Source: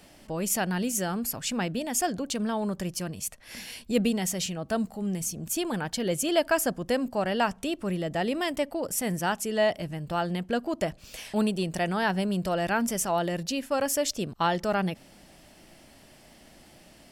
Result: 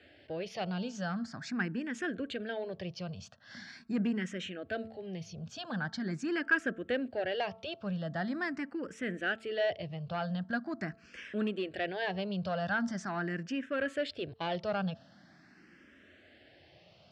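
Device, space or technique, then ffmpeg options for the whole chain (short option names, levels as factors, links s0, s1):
barber-pole phaser into a guitar amplifier: -filter_complex "[0:a]asplit=2[s0][s1];[s1]afreqshift=0.43[s2];[s0][s2]amix=inputs=2:normalize=1,asoftclip=type=tanh:threshold=0.0841,highpass=69,highpass=78,equalizer=f=89:t=q:w=4:g=7,equalizer=f=920:t=q:w=4:g=-8,equalizer=f=1600:t=q:w=4:g=9,lowpass=f=4500:w=0.5412,lowpass=f=4500:w=1.3066,bandreject=f=222.8:t=h:w=4,bandreject=f=445.6:t=h:w=4,bandreject=f=668.4:t=h:w=4,bandreject=f=891.2:t=h:w=4,bandreject=f=1114:t=h:w=4,bandreject=f=1336.8:t=h:w=4,volume=0.75"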